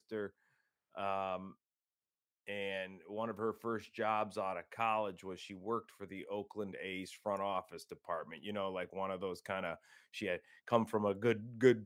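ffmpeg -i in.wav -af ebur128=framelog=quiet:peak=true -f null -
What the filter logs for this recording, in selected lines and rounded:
Integrated loudness:
  I:         -39.3 LUFS
  Threshold: -49.7 LUFS
Loudness range:
  LRA:         4.1 LU
  Threshold: -60.7 LUFS
  LRA low:   -42.7 LUFS
  LRA high:  -38.6 LUFS
True peak:
  Peak:      -14.8 dBFS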